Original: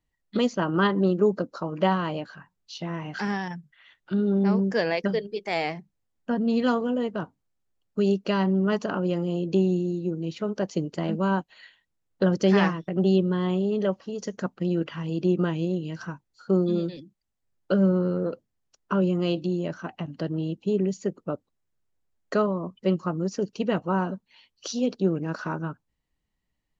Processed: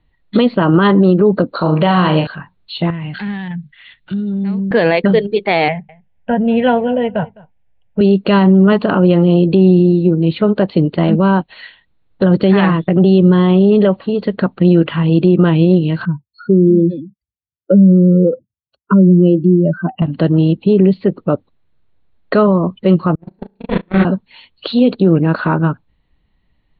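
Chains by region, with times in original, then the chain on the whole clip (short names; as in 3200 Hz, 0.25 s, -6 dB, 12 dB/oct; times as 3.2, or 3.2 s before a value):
1.55–2.27 high shelf 4000 Hz +9.5 dB + flutter echo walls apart 6.6 m, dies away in 0.36 s
2.9–4.71 compressor 2.5:1, threshold -38 dBFS + band shelf 660 Hz -9 dB 2.5 oct
5.68–8.01 fixed phaser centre 1200 Hz, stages 6 + echo 0.208 s -23.5 dB
16.05–20.02 spectral contrast raised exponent 2.2 + HPF 72 Hz 24 dB/oct
23.15–24.05 minimum comb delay 0.47 ms + flutter echo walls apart 6.2 m, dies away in 0.86 s + gate -20 dBFS, range -47 dB
whole clip: Chebyshev low-pass 4300 Hz, order 8; low shelf 190 Hz +6 dB; maximiser +17 dB; gain -1.5 dB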